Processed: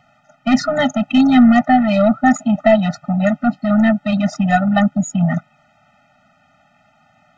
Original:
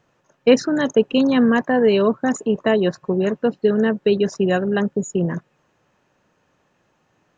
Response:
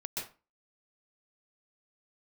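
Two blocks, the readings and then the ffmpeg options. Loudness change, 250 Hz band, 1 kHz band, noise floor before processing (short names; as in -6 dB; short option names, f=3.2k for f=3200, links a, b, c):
+3.5 dB, +6.0 dB, +9.5 dB, -65 dBFS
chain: -filter_complex "[0:a]acontrast=89,asplit=2[a][b];[b]highpass=f=720:p=1,volume=10dB,asoftclip=type=tanh:threshold=-0.5dB[c];[a][c]amix=inputs=2:normalize=0,lowpass=f=2k:p=1,volume=-6dB,afftfilt=real='re*eq(mod(floor(b*sr/1024/300),2),0)':imag='im*eq(mod(floor(b*sr/1024/300),2),0)':win_size=1024:overlap=0.75,volume=3.5dB"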